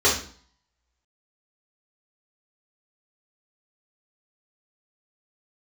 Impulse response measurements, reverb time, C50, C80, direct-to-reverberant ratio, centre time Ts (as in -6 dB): 0.50 s, 5.5 dB, 11.5 dB, -7.5 dB, 31 ms